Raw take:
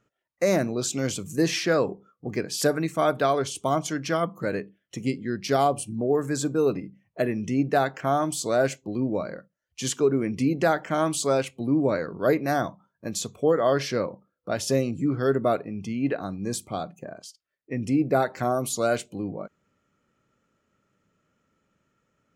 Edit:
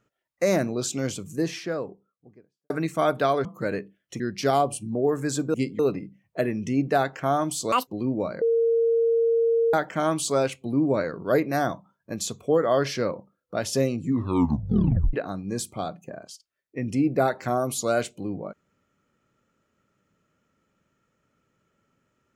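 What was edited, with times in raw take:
0:00.67–0:02.70: fade out and dull
0:03.45–0:04.26: remove
0:05.01–0:05.26: move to 0:06.60
0:08.53–0:08.82: play speed 188%
0:09.36–0:10.68: beep over 460 Hz −18 dBFS
0:14.98: tape stop 1.10 s

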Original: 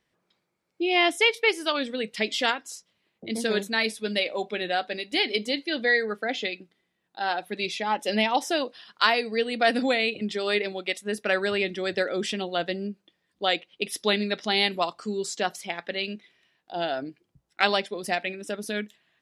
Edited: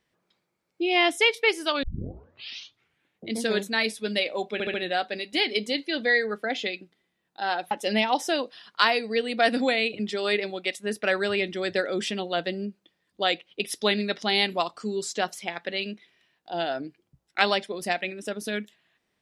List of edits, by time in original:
0:01.83: tape start 1.44 s
0:04.53: stutter 0.07 s, 4 plays
0:07.50–0:07.93: remove

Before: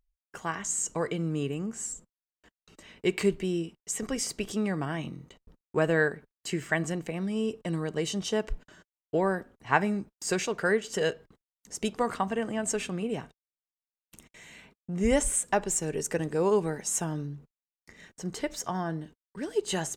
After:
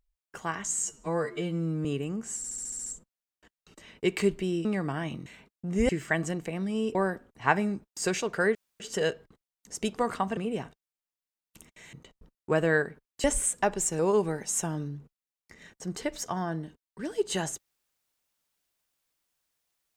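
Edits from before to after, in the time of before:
0:00.85–0:01.35: time-stretch 2×
0:01.87: stutter 0.07 s, 8 plays
0:03.66–0:04.58: remove
0:05.19–0:06.50: swap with 0:14.51–0:15.14
0:07.56–0:09.20: remove
0:10.80: splice in room tone 0.25 s
0:12.37–0:12.95: remove
0:15.89–0:16.37: remove

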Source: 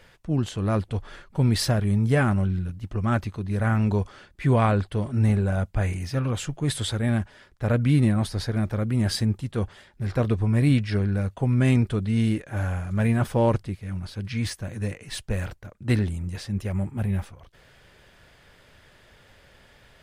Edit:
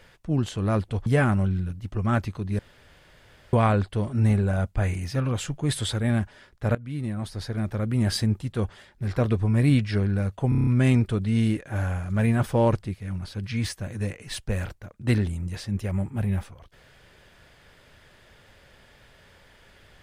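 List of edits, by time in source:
0:01.06–0:02.05: remove
0:03.58–0:04.52: fill with room tone
0:07.74–0:08.99: fade in, from −20.5 dB
0:11.48: stutter 0.03 s, 7 plays

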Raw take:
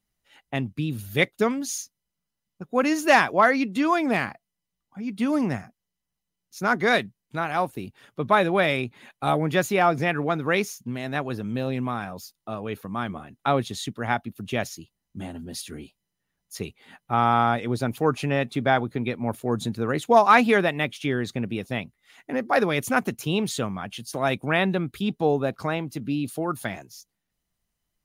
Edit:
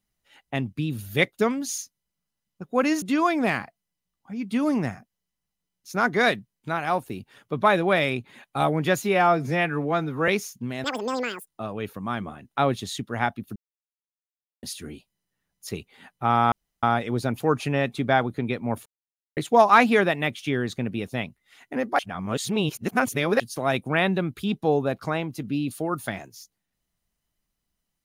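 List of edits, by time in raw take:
0:03.02–0:03.69: remove
0:09.69–0:10.53: time-stretch 1.5×
0:11.09–0:12.36: play speed 199%
0:14.44–0:15.51: silence
0:17.40: splice in room tone 0.31 s
0:19.43–0:19.94: silence
0:22.56–0:23.97: reverse

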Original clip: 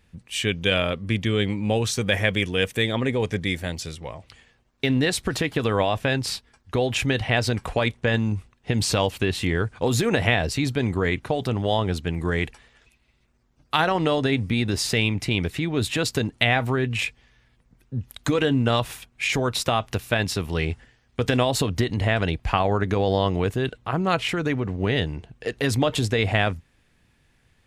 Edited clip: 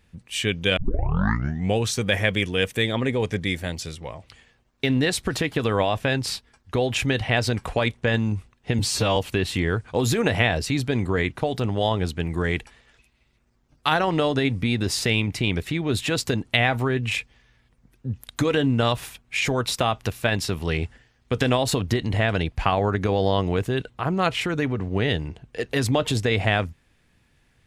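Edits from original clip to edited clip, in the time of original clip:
0:00.77: tape start 1.00 s
0:08.79–0:09.04: time-stretch 1.5×

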